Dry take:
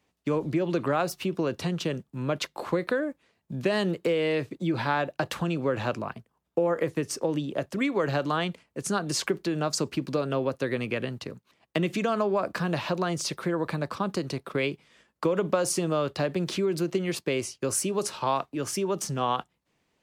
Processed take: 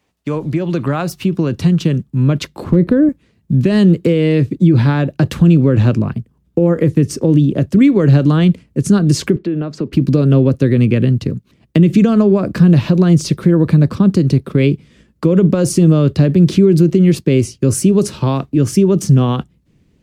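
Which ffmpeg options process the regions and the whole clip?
-filter_complex "[0:a]asettb=1/sr,asplit=3[s0][s1][s2];[s0]atrim=end=2.644[s3];[s1]atrim=start=2.64:end=3.09,asetpts=PTS-STARTPTS,afade=t=in:d=0.004:c=qsin,afade=t=out:st=0.446:d=0.004:c=qsin,tiltshelf=f=860:g=8,asoftclip=type=hard:threshold=0.224[s4];[s2]atrim=start=3.086[s5];[s3][s4]acrossfade=d=0.004:c1=hsin:c2=qsin[s6];[s6][s5]acrossfade=d=0.004:c1=qsin:c2=hsin,asettb=1/sr,asplit=3[s7][s8][s9];[s7]atrim=end=9.364[s10];[s8]atrim=start=9.36:end=9.93,asetpts=PTS-STARTPTS,afade=t=in:d=0.004:c=qsin,afade=t=out:st=0.566:d=0.004:c=qsin,acrossover=split=210 3300:gain=0.224 1 0.0794[s11][s12][s13];[s11][s12][s13]amix=inputs=3:normalize=0,acompressor=threshold=0.01:ratio=1.5:attack=3.2:release=140:knee=1:detection=peak[s14];[s9]atrim=start=9.926[s15];[s10][s14]acrossfade=d=0.004:c1=hsin:c2=qsin[s16];[s16][s15]acrossfade=d=0.004:c1=qsin:c2=hsin,asubboost=boost=10.5:cutoff=250,alimiter=level_in=2.37:limit=0.891:release=50:level=0:latency=1,volume=0.891"

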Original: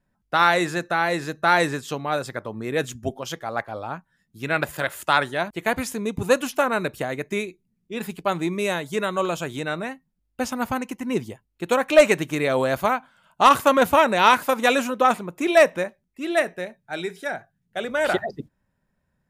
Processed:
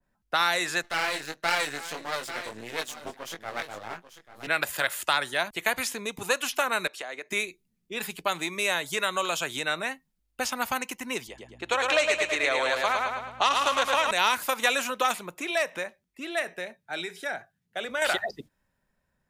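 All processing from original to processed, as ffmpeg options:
-filter_complex "[0:a]asettb=1/sr,asplit=3[s0][s1][s2];[s0]atrim=end=0.824[s3];[s1]atrim=start=0.82:end=4.47,asetpts=PTS-STARTPTS,afade=t=in:d=0.004:c=qsin,afade=t=out:st=3.646:d=0.004:c=qsin,aecho=1:1:840:0.2,atrim=end_sample=160965,flanger=delay=17.5:depth=3.4:speed=1.6,aeval=exprs='max(val(0),0)':c=same[s4];[s2]atrim=start=4.466[s5];[s3][s4]acrossfade=d=0.004:c1=hsin:c2=qsin[s6];[s6][s5]acrossfade=d=0.004:c1=qsin:c2=hsin,asettb=1/sr,asplit=3[s7][s8][s9];[s7]atrim=end=6.874[s10];[s8]atrim=start=6.87:end=7.3,asetpts=PTS-STARTPTS,afade=t=in:d=0.004:c=qsin,afade=t=out:st=0.426:d=0.004:c=qsin,highpass=430,lowpass=6800,acompressor=threshold=0.0178:ratio=3:attack=3.2:release=140:knee=1:detection=peak[s11];[s9]atrim=start=7.296[s12];[s10][s11]acrossfade=d=0.004:c1=hsin:c2=qsin[s13];[s13][s12]acrossfade=d=0.004:c1=qsin:c2=hsin,asettb=1/sr,asplit=3[s14][s15][s16];[s14]atrim=end=11.274[s17];[s15]atrim=start=11.27:end=14.11,asetpts=PTS-STARTPTS,afade=t=in:d=0.004:c=qsin,afade=t=out:st=2.836:d=0.004:c=qsin,highpass=280,lowpass=5500,aeval=exprs='val(0)+0.00562*(sin(2*PI*60*n/s)+sin(2*PI*2*60*n/s)/2+sin(2*PI*3*60*n/s)/3+sin(2*PI*4*60*n/s)/4+sin(2*PI*5*60*n/s)/5)':c=same,aecho=1:1:108|216|324|432|540|648:0.631|0.29|0.134|0.0614|0.0283|0.013,atrim=end_sample=125244[s18];[s16]atrim=start=14.106[s19];[s17][s18]acrossfade=d=0.004:c1=hsin:c2=qsin[s20];[s20][s19]acrossfade=d=0.004:c1=qsin:c2=hsin,asettb=1/sr,asplit=3[s21][s22][s23];[s21]atrim=end=15.344[s24];[s22]atrim=start=15.34:end=18.02,asetpts=PTS-STARTPTS,afade=t=in:d=0.004:c=qsin,afade=t=out:st=2.676:d=0.004:c=qsin,highpass=49,acompressor=threshold=0.0224:ratio=1.5:attack=3.2:release=140:knee=1:detection=peak,highshelf=f=5300:g=-4.5[s25];[s23]atrim=start=18.016[s26];[s24][s25]acrossfade=d=0.004:c1=hsin:c2=qsin[s27];[s27][s26]acrossfade=d=0.004:c1=qsin:c2=hsin,equalizer=f=130:w=0.53:g=-6.5,acrossover=split=110|580|2200|4500[s28][s29][s30][s31][s32];[s28]acompressor=threshold=0.00126:ratio=4[s33];[s29]acompressor=threshold=0.0112:ratio=4[s34];[s30]acompressor=threshold=0.0501:ratio=4[s35];[s31]acompressor=threshold=0.0158:ratio=4[s36];[s32]acompressor=threshold=0.00891:ratio=4[s37];[s33][s34][s35][s36][s37]amix=inputs=5:normalize=0,adynamicequalizer=threshold=0.00891:dfrequency=1900:dqfactor=0.7:tfrequency=1900:tqfactor=0.7:attack=5:release=100:ratio=0.375:range=3.5:mode=boostabove:tftype=highshelf"

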